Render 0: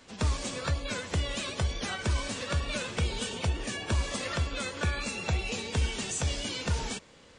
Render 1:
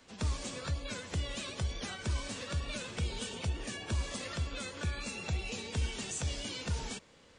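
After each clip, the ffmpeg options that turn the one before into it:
-filter_complex "[0:a]acrossover=split=370|3000[a][b][c];[b]acompressor=threshold=-37dB:ratio=6[d];[a][d][c]amix=inputs=3:normalize=0,volume=-5dB"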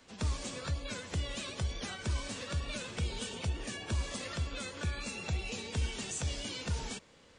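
-af anull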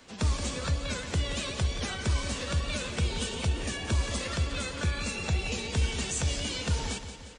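-af "aecho=1:1:176|352|528|704|880|1056:0.282|0.158|0.0884|0.0495|0.0277|0.0155,volume=6dB"

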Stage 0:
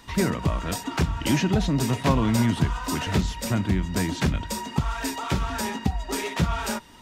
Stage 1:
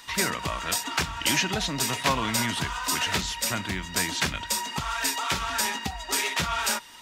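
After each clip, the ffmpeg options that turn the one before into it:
-af "tiltshelf=f=640:g=-9.5,volume=-2.5dB"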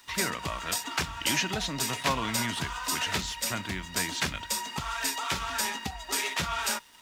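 -af "aeval=exprs='sgn(val(0))*max(abs(val(0))-0.00266,0)':c=same,volume=-3dB"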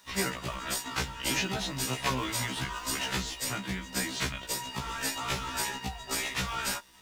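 -filter_complex "[0:a]asplit=2[a][b];[b]acrusher=samples=37:mix=1:aa=0.000001:lfo=1:lforange=37:lforate=3.5,volume=-11dB[c];[a][c]amix=inputs=2:normalize=0,afftfilt=real='re*1.73*eq(mod(b,3),0)':imag='im*1.73*eq(mod(b,3),0)':win_size=2048:overlap=0.75"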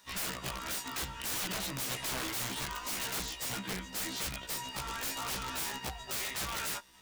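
-af "aeval=exprs='(mod(23.7*val(0)+1,2)-1)/23.7':c=same,volume=-2.5dB"

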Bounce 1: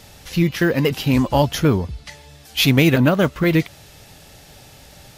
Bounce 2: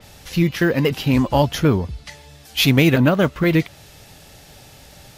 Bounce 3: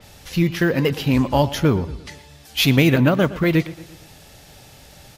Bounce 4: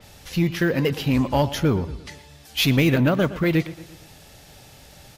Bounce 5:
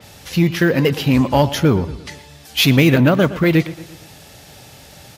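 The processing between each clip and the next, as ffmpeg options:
-af "adynamicequalizer=threshold=0.0141:dfrequency=4500:dqfactor=0.7:tfrequency=4500:tqfactor=0.7:attack=5:release=100:ratio=0.375:range=2:mode=cutabove:tftype=highshelf"
-filter_complex "[0:a]asplit=2[a][b];[b]adelay=116,lowpass=f=3.8k:p=1,volume=-16.5dB,asplit=2[c][d];[d]adelay=116,lowpass=f=3.8k:p=1,volume=0.5,asplit=2[e][f];[f]adelay=116,lowpass=f=3.8k:p=1,volume=0.5,asplit=2[g][h];[h]adelay=116,lowpass=f=3.8k:p=1,volume=0.5[i];[a][c][e][g][i]amix=inputs=5:normalize=0,volume=-1dB"
-af "acontrast=44,volume=-7.5dB"
-af "highpass=69,volume=6dB"

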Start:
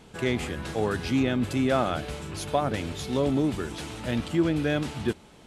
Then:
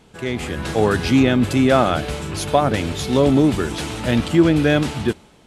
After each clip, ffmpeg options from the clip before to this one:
-af "dynaudnorm=f=110:g=9:m=11.5dB"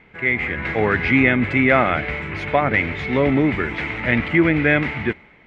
-af "lowpass=f=2.1k:t=q:w=9,volume=-3dB"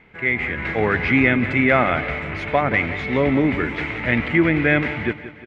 -af "aecho=1:1:177|354|531|708|885:0.2|0.104|0.054|0.0281|0.0146,volume=-1dB"

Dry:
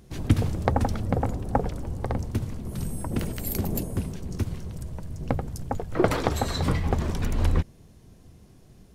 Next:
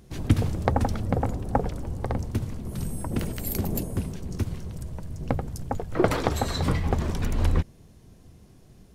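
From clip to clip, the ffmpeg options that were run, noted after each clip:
-af anull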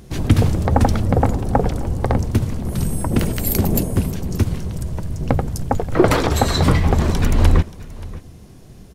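-af "aecho=1:1:579:0.106,alimiter=level_in=11dB:limit=-1dB:release=50:level=0:latency=1,volume=-1dB"

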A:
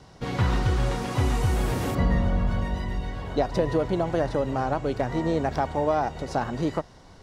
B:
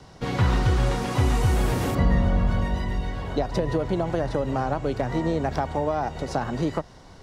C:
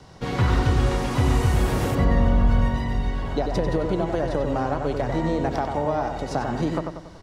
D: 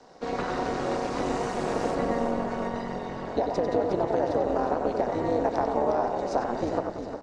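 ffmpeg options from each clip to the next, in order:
-filter_complex "[0:a]acrossover=split=160[a][b];[b]acompressor=threshold=-24dB:ratio=6[c];[a][c]amix=inputs=2:normalize=0,volume=2.5dB"
-filter_complex "[0:a]asplit=2[a][b];[b]adelay=94,lowpass=f=3.5k:p=1,volume=-5dB,asplit=2[c][d];[d]adelay=94,lowpass=f=3.5k:p=1,volume=0.47,asplit=2[e][f];[f]adelay=94,lowpass=f=3.5k:p=1,volume=0.47,asplit=2[g][h];[h]adelay=94,lowpass=f=3.5k:p=1,volume=0.47,asplit=2[i][j];[j]adelay=94,lowpass=f=3.5k:p=1,volume=0.47,asplit=2[k][l];[l]adelay=94,lowpass=f=3.5k:p=1,volume=0.47[m];[a][c][e][g][i][k][m]amix=inputs=7:normalize=0"
-filter_complex "[0:a]highpass=f=210:w=0.5412,highpass=f=210:w=1.3066,equalizer=f=480:t=q:w=4:g=6,equalizer=f=700:t=q:w=4:g=6,equalizer=f=2.1k:t=q:w=4:g=-3,equalizer=f=3.2k:t=q:w=4:g=-7,lowpass=f=7.8k:w=0.5412,lowpass=f=7.8k:w=1.3066,asplit=6[a][b][c][d][e][f];[b]adelay=359,afreqshift=-45,volume=-8.5dB[g];[c]adelay=718,afreqshift=-90,volume=-14.9dB[h];[d]adelay=1077,afreqshift=-135,volume=-21.3dB[i];[e]adelay=1436,afreqshift=-180,volume=-27.6dB[j];[f]adelay=1795,afreqshift=-225,volume=-34dB[k];[a][g][h][i][j][k]amix=inputs=6:normalize=0,tremolo=f=220:d=0.824,volume=-1dB"

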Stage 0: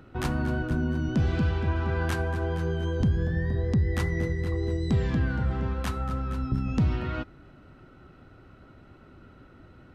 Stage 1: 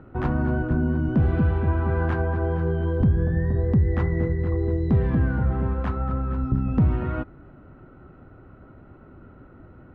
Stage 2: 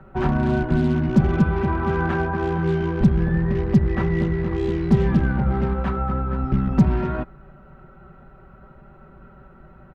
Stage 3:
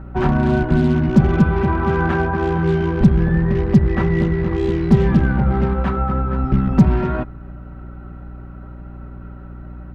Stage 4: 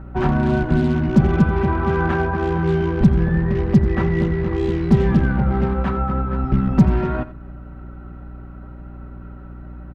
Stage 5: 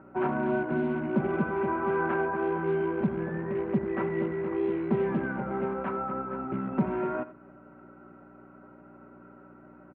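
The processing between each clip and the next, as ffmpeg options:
-af "lowpass=1.4k,volume=4.5dB"
-filter_complex "[0:a]aecho=1:1:5.2:0.91,acrossover=split=220|410[a][b][c];[b]acrusher=bits=5:mix=0:aa=0.5[d];[a][d][c]amix=inputs=3:normalize=0,volume=1.5dB"
-af "aeval=exprs='val(0)+0.0141*(sin(2*PI*60*n/s)+sin(2*PI*2*60*n/s)/2+sin(2*PI*3*60*n/s)/3+sin(2*PI*4*60*n/s)/4+sin(2*PI*5*60*n/s)/5)':c=same,volume=4dB"
-af "aecho=1:1:87:0.158,volume=-1.5dB"
-af "highpass=400,equalizer=f=490:t=q:w=4:g=-4,equalizer=f=780:t=q:w=4:g=-6,equalizer=f=1.2k:t=q:w=4:g=-6,equalizer=f=1.8k:t=q:w=4:g=-9,lowpass=f=2.1k:w=0.5412,lowpass=f=2.1k:w=1.3066,volume=-1dB"

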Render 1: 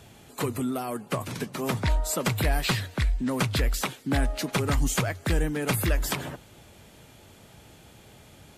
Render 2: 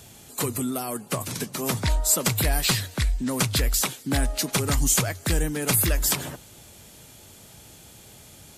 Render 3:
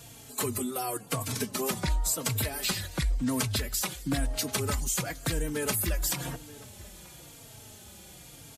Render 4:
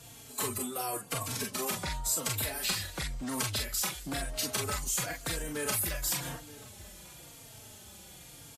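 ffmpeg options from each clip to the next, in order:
-af "bass=f=250:g=1,treble=f=4k:g=11"
-filter_complex "[0:a]acompressor=threshold=-25dB:ratio=6,asplit=2[a][b];[b]adelay=932.9,volume=-19dB,highshelf=f=4k:g=-21[c];[a][c]amix=inputs=2:normalize=0,asplit=2[d][e];[e]adelay=3.8,afreqshift=-0.96[f];[d][f]amix=inputs=2:normalize=1,volume=2dB"
-filter_complex "[0:a]acrossover=split=520[a][b];[a]asoftclip=type=tanh:threshold=-32dB[c];[b]aecho=1:1:34|44:0.531|0.596[d];[c][d]amix=inputs=2:normalize=0,aresample=32000,aresample=44100,volume=-3dB"

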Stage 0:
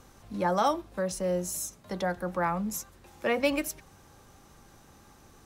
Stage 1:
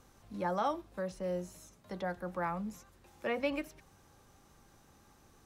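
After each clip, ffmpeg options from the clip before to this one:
-filter_complex "[0:a]acrossover=split=3800[a][b];[b]acompressor=threshold=-51dB:ratio=4:attack=1:release=60[c];[a][c]amix=inputs=2:normalize=0,volume=-7dB"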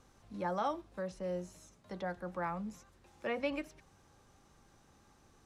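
-af "lowpass=9.4k,volume=-2dB"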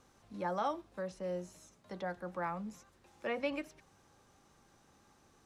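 -af "lowshelf=f=93:g=-8.5"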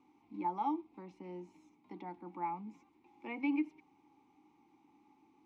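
-filter_complex "[0:a]asplit=3[a][b][c];[a]bandpass=f=300:t=q:w=8,volume=0dB[d];[b]bandpass=f=870:t=q:w=8,volume=-6dB[e];[c]bandpass=f=2.24k:t=q:w=8,volume=-9dB[f];[d][e][f]amix=inputs=3:normalize=0,volume=10.5dB"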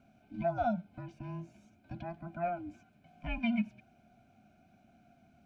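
-af "afftfilt=real='real(if(between(b,1,1008),(2*floor((b-1)/24)+1)*24-b,b),0)':imag='imag(if(between(b,1,1008),(2*floor((b-1)/24)+1)*24-b,b),0)*if(between(b,1,1008),-1,1)':win_size=2048:overlap=0.75,lowshelf=f=140:t=q:w=1.5:g=8.5,volume=4dB"

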